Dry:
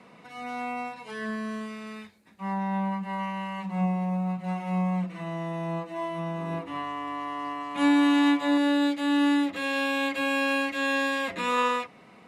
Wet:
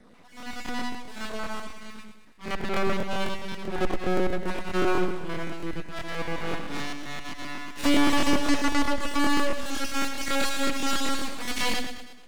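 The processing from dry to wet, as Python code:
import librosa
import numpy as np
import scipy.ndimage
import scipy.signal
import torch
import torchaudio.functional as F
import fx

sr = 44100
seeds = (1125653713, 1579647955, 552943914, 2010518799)

y = fx.spec_dropout(x, sr, seeds[0], share_pct=32)
y = fx.dynamic_eq(y, sr, hz=270.0, q=4.4, threshold_db=-37.0, ratio=4.0, max_db=6)
y = fx.cheby_harmonics(y, sr, harmonics=(7, 8), levels_db=(-25, -7), full_scale_db=-10.0)
y = fx.rider(y, sr, range_db=4, speed_s=2.0)
y = 10.0 ** (-19.5 / 20.0) * np.tanh(y / 10.0 ** (-19.5 / 20.0))
y = fx.graphic_eq(y, sr, hz=(125, 250, 8000), db=(-3, 5, 4))
y = np.maximum(y, 0.0)
y = fx.echo_feedback(y, sr, ms=107, feedback_pct=50, wet_db=-8)
y = fx.buffer_crackle(y, sr, first_s=0.38, period_s=0.13, block=1024, kind='repeat')
y = F.gain(torch.from_numpy(y), 2.5).numpy()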